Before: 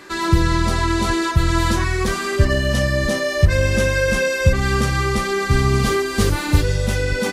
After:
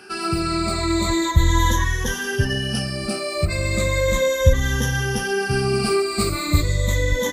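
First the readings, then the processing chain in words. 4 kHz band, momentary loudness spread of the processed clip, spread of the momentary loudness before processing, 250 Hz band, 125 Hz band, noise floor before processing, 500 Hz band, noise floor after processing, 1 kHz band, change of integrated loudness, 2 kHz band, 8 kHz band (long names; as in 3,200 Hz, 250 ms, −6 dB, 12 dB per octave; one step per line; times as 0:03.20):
0.0 dB, 6 LU, 3 LU, −2.5 dB, −3.0 dB, −25 dBFS, −2.0 dB, −28 dBFS, −3.0 dB, −2.5 dB, −3.5 dB, +0.5 dB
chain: rippled gain that drifts along the octave scale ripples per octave 1.1, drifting −0.36 Hz, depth 19 dB
high-shelf EQ 4,700 Hz +4.5 dB
level −6.5 dB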